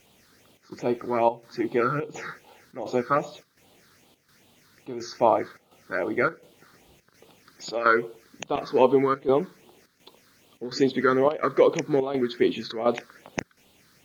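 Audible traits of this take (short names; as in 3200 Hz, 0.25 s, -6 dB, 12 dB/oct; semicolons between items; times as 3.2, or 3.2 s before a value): phasing stages 6, 2.5 Hz, lowest notch 700–1700 Hz; a quantiser's noise floor 12-bit, dither triangular; chopped level 1.4 Hz, depth 65%, duty 80%; MP3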